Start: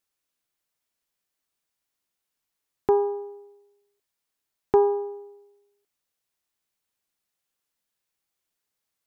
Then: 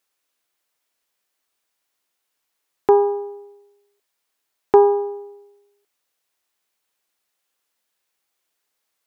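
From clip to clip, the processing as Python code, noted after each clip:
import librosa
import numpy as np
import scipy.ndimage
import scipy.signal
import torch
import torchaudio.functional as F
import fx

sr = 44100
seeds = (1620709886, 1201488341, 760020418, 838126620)

y = fx.bass_treble(x, sr, bass_db=-11, treble_db=-2)
y = F.gain(torch.from_numpy(y), 8.0).numpy()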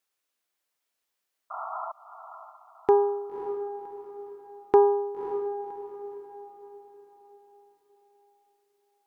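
y = fx.spec_paint(x, sr, seeds[0], shape='noise', start_s=1.5, length_s=0.42, low_hz=620.0, high_hz=1400.0, level_db=-29.0)
y = fx.echo_diffused(y, sr, ms=556, feedback_pct=41, wet_db=-10.0)
y = F.gain(torch.from_numpy(y), -6.0).numpy()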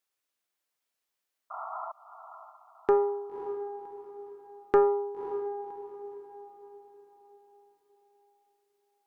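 y = fx.doppler_dist(x, sr, depth_ms=0.31)
y = F.gain(torch.from_numpy(y), -3.0).numpy()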